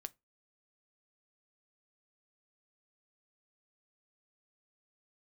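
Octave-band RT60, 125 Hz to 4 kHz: 0.25, 0.25, 0.25, 0.20, 0.20, 0.15 seconds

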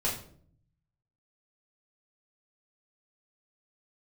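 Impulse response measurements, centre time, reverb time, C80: 30 ms, 0.55 s, 10.5 dB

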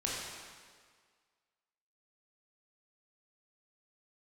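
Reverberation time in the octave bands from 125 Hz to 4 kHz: 1.5, 1.6, 1.7, 1.8, 1.7, 1.5 seconds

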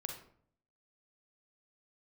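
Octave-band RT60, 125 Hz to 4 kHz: 0.80, 0.75, 0.60, 0.55, 0.45, 0.35 seconds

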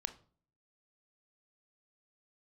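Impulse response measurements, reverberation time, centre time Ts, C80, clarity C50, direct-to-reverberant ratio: 0.45 s, 5 ms, 20.5 dB, 15.0 dB, 10.0 dB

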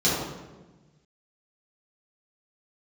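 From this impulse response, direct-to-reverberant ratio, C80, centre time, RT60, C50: −9.5 dB, 2.5 dB, 80 ms, 1.2 s, −0.5 dB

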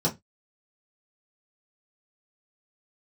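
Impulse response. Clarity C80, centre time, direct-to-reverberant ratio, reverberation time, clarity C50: 27.5 dB, 13 ms, −5.0 dB, 0.15 s, 17.5 dB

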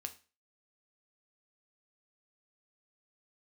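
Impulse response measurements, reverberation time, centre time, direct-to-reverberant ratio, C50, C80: 0.35 s, 6 ms, 6.0 dB, 15.5 dB, 20.5 dB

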